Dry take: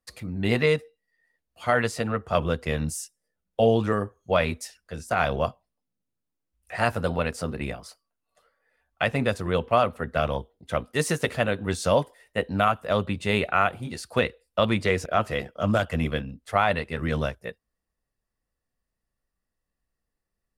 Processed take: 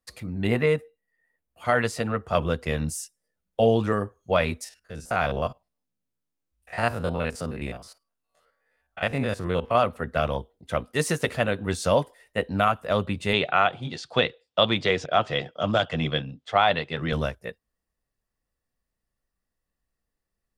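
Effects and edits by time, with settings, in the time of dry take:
0.47–1.65 s: peaking EQ 4.8 kHz -12 dB 1.2 oct
4.64–9.75 s: spectrogram pixelated in time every 50 ms
13.33–17.13 s: cabinet simulation 130–6600 Hz, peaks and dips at 140 Hz +6 dB, 210 Hz -4 dB, 760 Hz +4 dB, 3.4 kHz +10 dB

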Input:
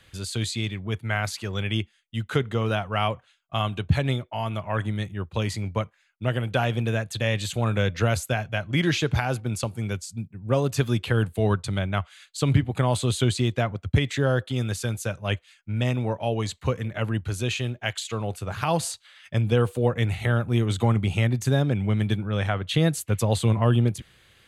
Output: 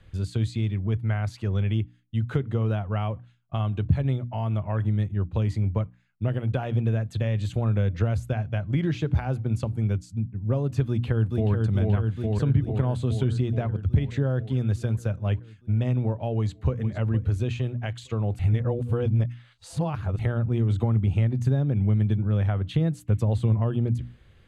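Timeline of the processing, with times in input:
10.87–11.52 s: echo throw 430 ms, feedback 70%, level -2.5 dB
16.33–16.81 s: echo throw 460 ms, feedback 25%, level -13 dB
18.39–20.19 s: reverse
whole clip: hum notches 60/120/180/240/300 Hz; compression 2.5:1, threshold -27 dBFS; tilt EQ -3.5 dB/octave; trim -3.5 dB

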